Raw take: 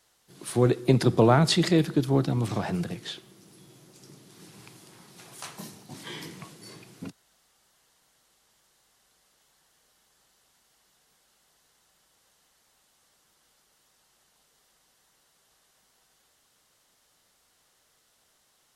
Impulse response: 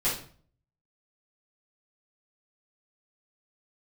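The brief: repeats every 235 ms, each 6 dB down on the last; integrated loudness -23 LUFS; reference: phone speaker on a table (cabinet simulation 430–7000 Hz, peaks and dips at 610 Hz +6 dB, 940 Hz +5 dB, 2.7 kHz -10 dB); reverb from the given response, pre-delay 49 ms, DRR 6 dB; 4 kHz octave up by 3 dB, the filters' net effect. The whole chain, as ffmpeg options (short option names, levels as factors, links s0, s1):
-filter_complex "[0:a]equalizer=f=4000:t=o:g=5,aecho=1:1:235|470|705|940|1175|1410:0.501|0.251|0.125|0.0626|0.0313|0.0157,asplit=2[s0][s1];[1:a]atrim=start_sample=2205,adelay=49[s2];[s1][s2]afir=irnorm=-1:irlink=0,volume=0.168[s3];[s0][s3]amix=inputs=2:normalize=0,highpass=f=430:w=0.5412,highpass=f=430:w=1.3066,equalizer=f=610:t=q:w=4:g=6,equalizer=f=940:t=q:w=4:g=5,equalizer=f=2700:t=q:w=4:g=-10,lowpass=f=7000:w=0.5412,lowpass=f=7000:w=1.3066,volume=1.41"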